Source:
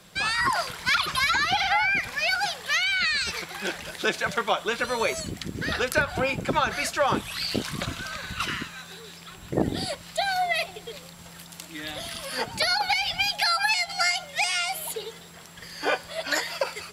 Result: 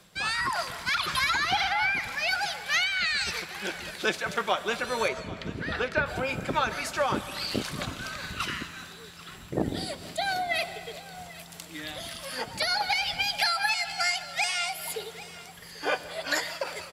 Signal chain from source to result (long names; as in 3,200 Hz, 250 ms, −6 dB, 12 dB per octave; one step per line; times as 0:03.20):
0:05.08–0:06.06: low-pass filter 3,200 Hz 12 dB per octave
single-tap delay 790 ms −17.5 dB
convolution reverb RT60 1.9 s, pre-delay 95 ms, DRR 13 dB
amplitude modulation by smooth noise, depth 55%